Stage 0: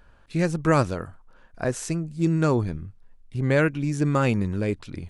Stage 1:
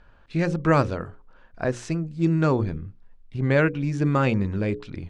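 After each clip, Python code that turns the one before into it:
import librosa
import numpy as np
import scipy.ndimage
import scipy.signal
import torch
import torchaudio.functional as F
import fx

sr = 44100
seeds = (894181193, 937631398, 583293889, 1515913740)

y = scipy.signal.sosfilt(scipy.signal.butter(2, 4500.0, 'lowpass', fs=sr, output='sos'), x)
y = fx.hum_notches(y, sr, base_hz=60, count=9)
y = y * librosa.db_to_amplitude(1.0)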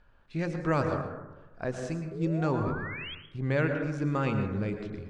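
y = fx.spec_paint(x, sr, seeds[0], shape='rise', start_s=2.11, length_s=1.04, low_hz=380.0, high_hz=3400.0, level_db=-33.0)
y = fx.rev_plate(y, sr, seeds[1], rt60_s=1.1, hf_ratio=0.3, predelay_ms=95, drr_db=5.0)
y = y * librosa.db_to_amplitude(-8.0)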